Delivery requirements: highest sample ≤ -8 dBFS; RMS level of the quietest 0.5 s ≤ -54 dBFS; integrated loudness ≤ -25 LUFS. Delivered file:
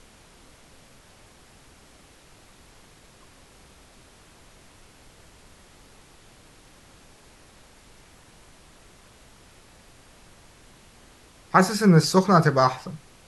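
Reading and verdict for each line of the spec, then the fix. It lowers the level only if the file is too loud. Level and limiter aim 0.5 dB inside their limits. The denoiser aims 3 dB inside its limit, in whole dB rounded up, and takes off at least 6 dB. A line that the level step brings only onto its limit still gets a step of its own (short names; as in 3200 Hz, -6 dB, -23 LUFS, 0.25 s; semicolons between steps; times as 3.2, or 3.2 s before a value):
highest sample -3.5 dBFS: fail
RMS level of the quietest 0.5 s -53 dBFS: fail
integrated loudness -19.5 LUFS: fail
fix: gain -6 dB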